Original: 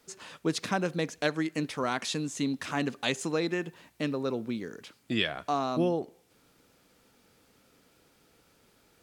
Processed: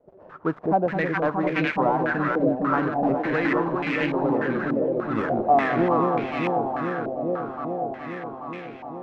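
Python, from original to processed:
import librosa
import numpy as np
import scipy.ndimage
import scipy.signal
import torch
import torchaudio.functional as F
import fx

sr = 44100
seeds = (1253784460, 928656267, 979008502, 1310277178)

y = fx.dead_time(x, sr, dead_ms=0.13)
y = fx.echo_alternate(y, sr, ms=209, hz=820.0, feedback_pct=89, wet_db=-2)
y = fx.filter_held_lowpass(y, sr, hz=3.4, low_hz=590.0, high_hz=2300.0)
y = y * librosa.db_to_amplitude(2.5)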